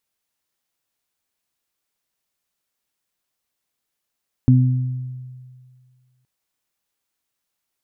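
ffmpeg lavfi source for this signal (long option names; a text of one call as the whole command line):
ffmpeg -f lavfi -i "aevalsrc='0.355*pow(10,-3*t/1.93)*sin(2*PI*127*t)+0.237*pow(10,-3*t/0.91)*sin(2*PI*254*t)':duration=1.77:sample_rate=44100" out.wav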